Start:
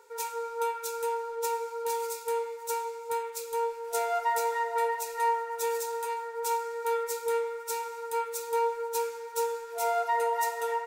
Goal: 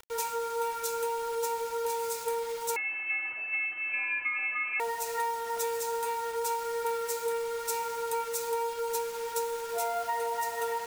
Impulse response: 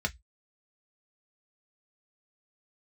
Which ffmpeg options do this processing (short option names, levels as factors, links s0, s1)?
-filter_complex "[0:a]acompressor=threshold=0.02:ratio=10,acrusher=bits=7:mix=0:aa=0.000001,asettb=1/sr,asplit=3[s0][s1][s2];[s0]atrim=end=2.764[s3];[s1]atrim=start=2.76:end=4.8,asetpts=PTS-STARTPTS,afade=t=in:d=0.004:c=qsin,afade=t=out:st=2.036:d=0.004:c=qsin,lowpass=f=2600:t=q:w=0.5098,lowpass=f=2600:t=q:w=0.6013,lowpass=f=2600:t=q:w=0.9,lowpass=f=2600:t=q:w=2.563,afreqshift=-3100[s4];[s2]atrim=start=4.796[s5];[s3][s4]acrossfade=d=0.004:c1=hsin:c2=qsin[s6];[s6][s5]acrossfade=d=0.004:c1=qsin:c2=hsin,volume=1.88"